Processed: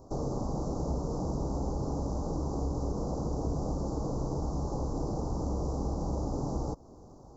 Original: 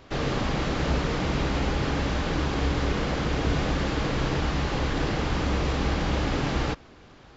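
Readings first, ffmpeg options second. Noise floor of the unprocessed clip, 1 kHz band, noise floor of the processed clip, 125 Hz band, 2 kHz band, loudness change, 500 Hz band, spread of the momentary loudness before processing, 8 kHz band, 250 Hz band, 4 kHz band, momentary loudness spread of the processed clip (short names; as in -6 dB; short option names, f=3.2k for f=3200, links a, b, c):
-51 dBFS, -8.5 dB, -52 dBFS, -6.0 dB, under -35 dB, -7.0 dB, -6.0 dB, 1 LU, n/a, -6.0 dB, -21.5 dB, 1 LU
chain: -af "acompressor=threshold=-33dB:ratio=2,asuperstop=centerf=2400:order=8:qfactor=0.51"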